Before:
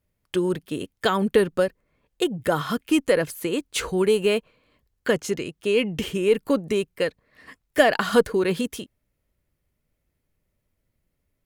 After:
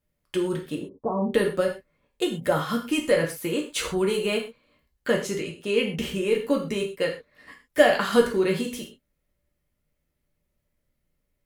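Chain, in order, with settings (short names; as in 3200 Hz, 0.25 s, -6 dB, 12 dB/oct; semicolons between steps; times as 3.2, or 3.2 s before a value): 0.75–1.31 rippled Chebyshev low-pass 1100 Hz, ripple 3 dB; non-linear reverb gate 0.15 s falling, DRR 0 dB; gain -4 dB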